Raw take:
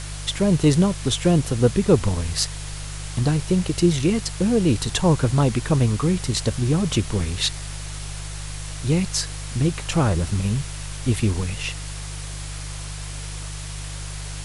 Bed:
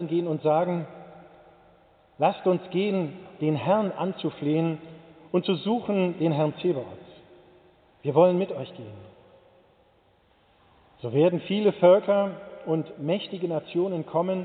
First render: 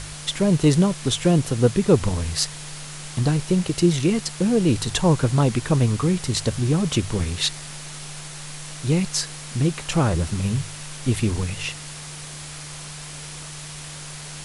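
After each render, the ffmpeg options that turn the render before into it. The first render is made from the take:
ffmpeg -i in.wav -af "bandreject=frequency=50:width_type=h:width=4,bandreject=frequency=100:width_type=h:width=4" out.wav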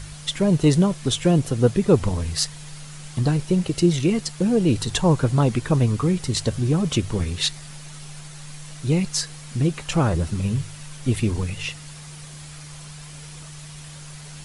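ffmpeg -i in.wav -af "afftdn=noise_reduction=7:noise_floor=-37" out.wav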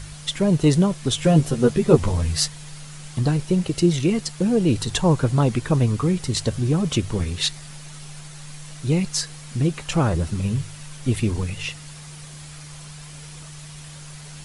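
ffmpeg -i in.wav -filter_complex "[0:a]asettb=1/sr,asplit=3[link_01][link_02][link_03];[link_01]atrim=end=1.174[link_04];[link_02]atrim=start=1.17:end=2.48,asetpts=PTS-STARTPTS,afade=type=in:duration=0.004:curve=qsin,afade=type=out:start_time=1.306:duration=0.004:curve=qsin,asplit=2[link_05][link_06];[link_06]adelay=13,volume=-3dB[link_07];[link_05][link_07]amix=inputs=2:normalize=0,atrim=end_sample=57771[link_08];[link_03]atrim=start=2.476[link_09];[link_04][link_08]acrossfade=duration=0.004:curve1=hsin:curve2=qsin[link_10];[link_10][link_09]acrossfade=duration=0.004:curve1=qsin:curve2=hsin" out.wav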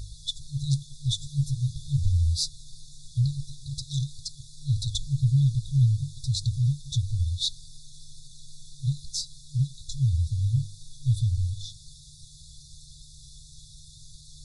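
ffmpeg -i in.wav -af "aemphasis=mode=reproduction:type=50fm,afftfilt=real='re*(1-between(b*sr/4096,150,3400))':imag='im*(1-between(b*sr/4096,150,3400))':win_size=4096:overlap=0.75" out.wav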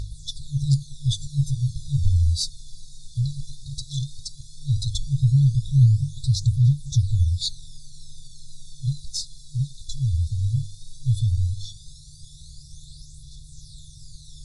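ffmpeg -i in.wav -af "aphaser=in_gain=1:out_gain=1:delay=1.8:decay=0.54:speed=0.15:type=triangular" out.wav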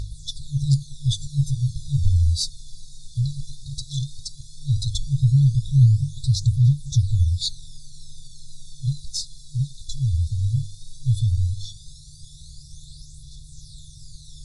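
ffmpeg -i in.wav -af "volume=1dB" out.wav

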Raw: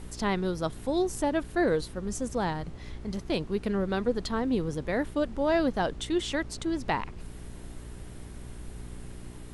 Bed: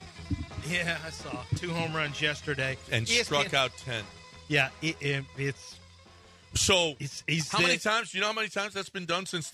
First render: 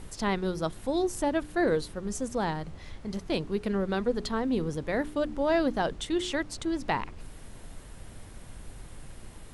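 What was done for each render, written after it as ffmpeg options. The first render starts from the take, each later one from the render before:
ffmpeg -i in.wav -af "bandreject=frequency=60:width_type=h:width=4,bandreject=frequency=120:width_type=h:width=4,bandreject=frequency=180:width_type=h:width=4,bandreject=frequency=240:width_type=h:width=4,bandreject=frequency=300:width_type=h:width=4,bandreject=frequency=360:width_type=h:width=4,bandreject=frequency=420:width_type=h:width=4" out.wav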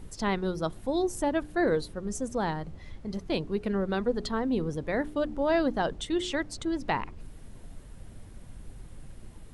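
ffmpeg -i in.wav -af "afftdn=noise_reduction=7:noise_floor=-47" out.wav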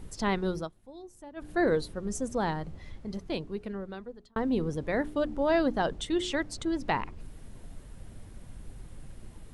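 ffmpeg -i in.wav -filter_complex "[0:a]asplit=4[link_01][link_02][link_03][link_04];[link_01]atrim=end=0.7,asetpts=PTS-STARTPTS,afade=type=out:start_time=0.57:duration=0.13:silence=0.112202[link_05];[link_02]atrim=start=0.7:end=1.36,asetpts=PTS-STARTPTS,volume=-19dB[link_06];[link_03]atrim=start=1.36:end=4.36,asetpts=PTS-STARTPTS,afade=type=in:duration=0.13:silence=0.112202,afade=type=out:start_time=1.42:duration=1.58[link_07];[link_04]atrim=start=4.36,asetpts=PTS-STARTPTS,afade=type=in:duration=0.004:curve=hsin[link_08];[link_05][link_06][link_07][link_08]concat=n=4:v=0:a=1" out.wav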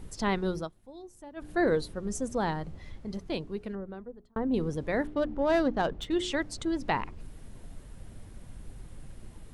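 ffmpeg -i in.wav -filter_complex "[0:a]asettb=1/sr,asplit=3[link_01][link_02][link_03];[link_01]atrim=end=3.754[link_04];[link_02]atrim=start=3.75:end=4.54,asetpts=PTS-STARTPTS,afade=type=in:duration=0.004:curve=qsin,afade=type=out:start_time=0.786:duration=0.004:curve=qsin,equalizer=frequency=5000:width_type=o:width=2.6:gain=-15[link_05];[link_03]atrim=start=4.536[link_06];[link_04][link_05]acrossfade=duration=0.004:curve1=hsin:curve2=qsin[link_07];[link_07][link_06]acrossfade=duration=0.004:curve1=qsin:curve2=hsin,asettb=1/sr,asplit=3[link_08][link_09][link_10];[link_08]atrim=end=5.074[link_11];[link_09]atrim=start=5.07:end=6.14,asetpts=PTS-STARTPTS,afade=type=in:duration=0.004:curve=qsin,afade=type=out:start_time=1.066:duration=0.004:curve=qsin,adynamicsmooth=sensitivity=5:basefreq=3000[link_12];[link_10]atrim=start=6.136[link_13];[link_11][link_12]acrossfade=duration=0.004:curve1=hsin:curve2=qsin[link_14];[link_14][link_13]acrossfade=duration=0.004:curve1=qsin:curve2=hsin" out.wav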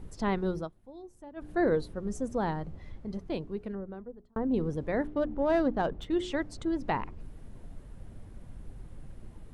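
ffmpeg -i in.wav -af "highshelf=frequency=2100:gain=-9.5" out.wav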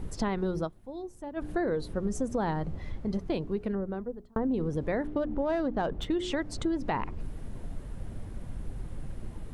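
ffmpeg -i in.wav -filter_complex "[0:a]asplit=2[link_01][link_02];[link_02]alimiter=limit=-23.5dB:level=0:latency=1,volume=2.5dB[link_03];[link_01][link_03]amix=inputs=2:normalize=0,acompressor=threshold=-26dB:ratio=6" out.wav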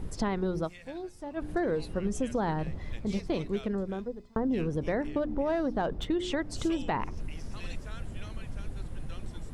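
ffmpeg -i in.wav -i bed.wav -filter_complex "[1:a]volume=-22dB[link_01];[0:a][link_01]amix=inputs=2:normalize=0" out.wav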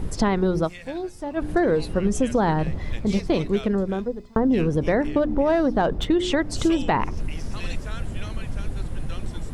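ffmpeg -i in.wav -af "volume=9dB" out.wav

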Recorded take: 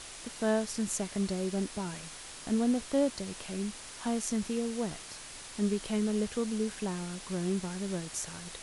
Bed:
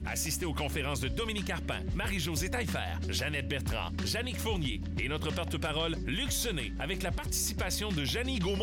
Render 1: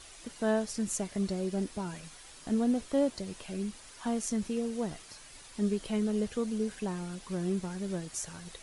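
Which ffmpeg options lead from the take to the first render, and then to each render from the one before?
ffmpeg -i in.wav -af "afftdn=noise_reduction=8:noise_floor=-46" out.wav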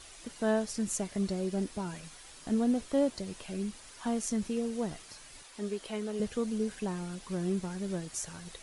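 ffmpeg -i in.wav -filter_complex "[0:a]asettb=1/sr,asplit=3[link_01][link_02][link_03];[link_01]atrim=end=5.434[link_04];[link_02]atrim=start=5.43:end=6.2,asetpts=PTS-STARTPTS,afade=type=in:duration=0.004:curve=qsin,afade=type=out:start_time=0.766:duration=0.004:curve=qsin,bass=frequency=250:gain=-13,treble=frequency=4000:gain=-2[link_05];[link_03]atrim=start=6.196[link_06];[link_04][link_05]acrossfade=duration=0.004:curve1=hsin:curve2=qsin[link_07];[link_07][link_06]acrossfade=duration=0.004:curve1=qsin:curve2=hsin" out.wav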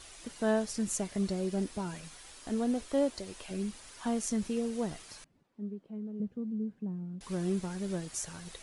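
ffmpeg -i in.wav -filter_complex "[0:a]asettb=1/sr,asplit=3[link_01][link_02][link_03];[link_01]atrim=end=2.324[link_04];[link_02]atrim=start=2.32:end=3.51,asetpts=PTS-STARTPTS,afade=type=in:duration=0.004:curve=qsin,afade=type=out:start_time=1.186:duration=0.004:curve=qsin,equalizer=frequency=160:width_type=o:width=0.66:gain=-12[link_05];[link_03]atrim=start=3.506[link_06];[link_04][link_05]acrossfade=duration=0.004:curve1=hsin:curve2=qsin[link_07];[link_07][link_06]acrossfade=duration=0.004:curve1=qsin:curve2=hsin,asettb=1/sr,asplit=3[link_08][link_09][link_10];[link_08]atrim=end=5.244[link_11];[link_09]atrim=start=5.24:end=7.21,asetpts=PTS-STARTPTS,afade=type=in:duration=0.004:curve=qsin,afade=type=out:start_time=1.966:duration=0.004:curve=qsin,bandpass=frequency=190:width_type=q:width=2.1[link_12];[link_10]atrim=start=7.206[link_13];[link_11][link_12]acrossfade=duration=0.004:curve1=hsin:curve2=qsin[link_14];[link_14][link_13]acrossfade=duration=0.004:curve1=qsin:curve2=hsin" out.wav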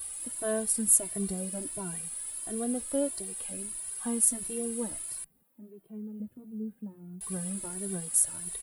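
ffmpeg -i in.wav -filter_complex "[0:a]aexciter=amount=15.4:drive=7.8:freq=9100,asplit=2[link_01][link_02];[link_02]adelay=2.1,afreqshift=1.5[link_03];[link_01][link_03]amix=inputs=2:normalize=1" out.wav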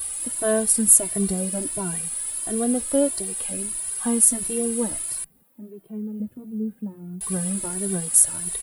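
ffmpeg -i in.wav -af "volume=9dB,alimiter=limit=-1dB:level=0:latency=1" out.wav

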